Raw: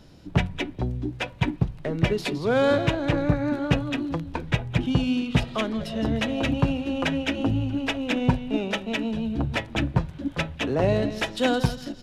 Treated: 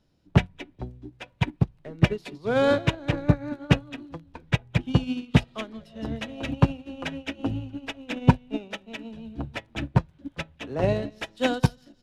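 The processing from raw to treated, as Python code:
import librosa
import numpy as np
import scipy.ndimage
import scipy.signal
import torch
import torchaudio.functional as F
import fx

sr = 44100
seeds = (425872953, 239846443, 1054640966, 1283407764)

y = fx.upward_expand(x, sr, threshold_db=-31.0, expansion=2.5)
y = F.gain(torch.from_numpy(y), 5.5).numpy()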